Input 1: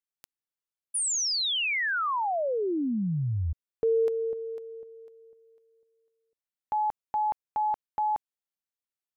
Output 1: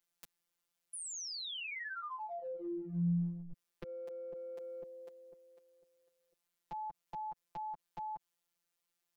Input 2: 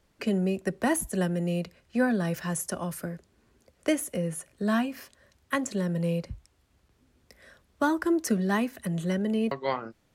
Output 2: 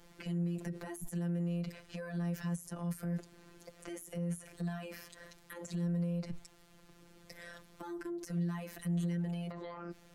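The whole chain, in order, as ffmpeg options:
-filter_complex "[0:a]acompressor=threshold=-39dB:ratio=10:attack=2:release=58:knee=1:detection=rms,afftfilt=real='hypot(re,im)*cos(PI*b)':imag='0':win_size=1024:overlap=0.75,acrossover=split=200[a][b];[b]acompressor=threshold=-52dB:ratio=6:attack=0.62:release=112:knee=2.83:detection=peak[c];[a][c]amix=inputs=2:normalize=0,volume=11.5dB"

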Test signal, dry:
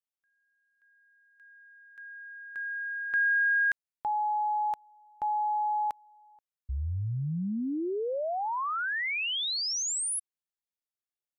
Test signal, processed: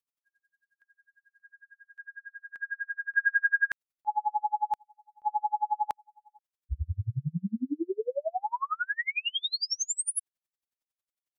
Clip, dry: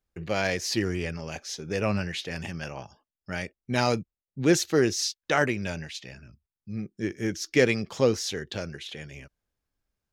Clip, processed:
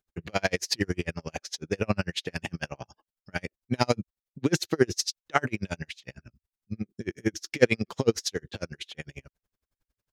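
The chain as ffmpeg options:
-af "aeval=exprs='val(0)*pow(10,-39*(0.5-0.5*cos(2*PI*11*n/s))/20)':c=same,volume=6dB"

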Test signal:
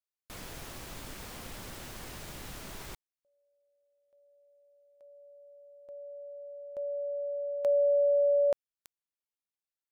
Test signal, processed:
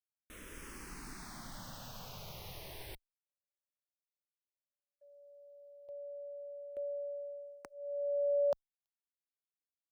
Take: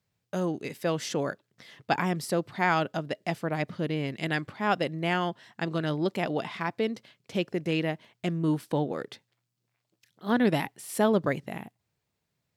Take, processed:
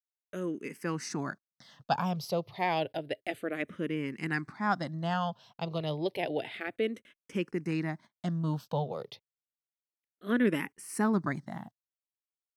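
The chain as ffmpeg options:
-filter_complex "[0:a]bandreject=f=7.2k:w=8.2,agate=range=-36dB:threshold=-58dB:ratio=16:release=71:detection=peak,dynaudnorm=f=200:g=5:m=4dB,asplit=2[a][b];[b]afreqshift=-0.3[c];[a][c]amix=inputs=2:normalize=1,volume=-5dB"

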